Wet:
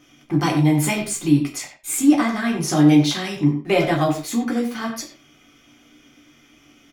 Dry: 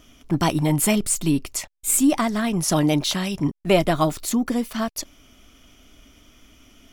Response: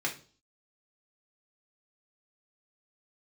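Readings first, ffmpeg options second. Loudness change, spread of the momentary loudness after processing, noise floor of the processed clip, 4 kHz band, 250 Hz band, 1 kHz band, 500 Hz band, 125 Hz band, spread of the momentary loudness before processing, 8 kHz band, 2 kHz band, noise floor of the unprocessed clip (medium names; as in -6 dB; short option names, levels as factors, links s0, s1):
+2.0 dB, 12 LU, -54 dBFS, -0.5 dB, +4.0 dB, +0.5 dB, 0.0 dB, +3.5 dB, 9 LU, -3.5 dB, +3.5 dB, -54 dBFS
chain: -filter_complex "[0:a]asplit=2[s0][s1];[s1]adelay=90,highpass=300,lowpass=3400,asoftclip=type=hard:threshold=0.188,volume=0.355[s2];[s0][s2]amix=inputs=2:normalize=0[s3];[1:a]atrim=start_sample=2205,afade=t=out:st=0.18:d=0.01,atrim=end_sample=8379[s4];[s3][s4]afir=irnorm=-1:irlink=0,volume=0.596"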